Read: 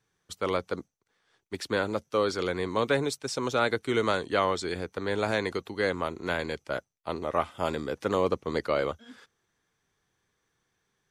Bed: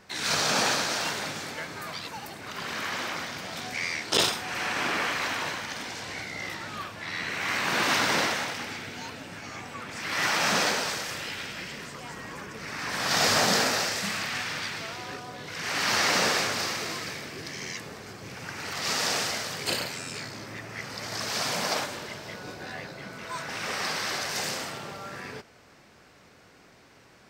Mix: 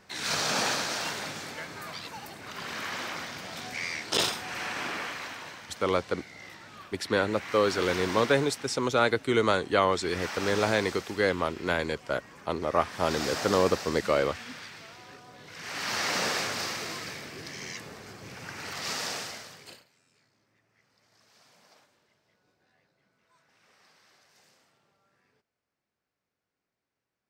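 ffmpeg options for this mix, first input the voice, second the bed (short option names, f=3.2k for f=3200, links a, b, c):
-filter_complex "[0:a]adelay=5400,volume=2dB[a];[1:a]volume=5dB,afade=t=out:st=4.44:d=0.97:silence=0.398107,afade=t=in:st=15.19:d=1.43:silence=0.398107,afade=t=out:st=18.68:d=1.16:silence=0.0354813[b];[a][b]amix=inputs=2:normalize=0"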